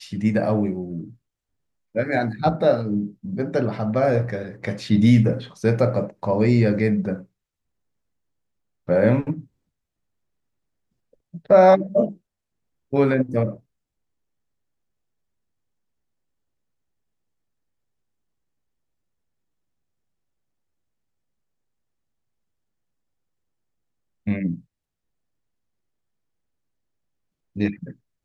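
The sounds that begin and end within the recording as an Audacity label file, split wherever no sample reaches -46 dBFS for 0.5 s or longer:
1.950000	7.250000	sound
8.880000	9.440000	sound
11.130000	12.170000	sound
12.930000	13.590000	sound
24.260000	24.600000	sound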